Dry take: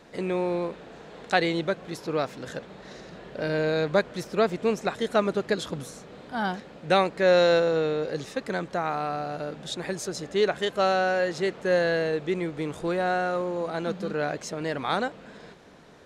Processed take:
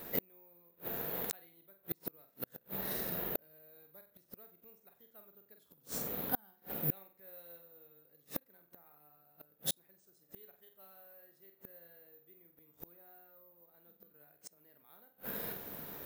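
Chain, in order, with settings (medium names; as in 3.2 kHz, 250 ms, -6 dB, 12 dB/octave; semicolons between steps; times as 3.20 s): flutter echo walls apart 8 m, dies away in 0.38 s; inverted gate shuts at -25 dBFS, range -40 dB; careless resampling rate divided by 3×, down none, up zero stuff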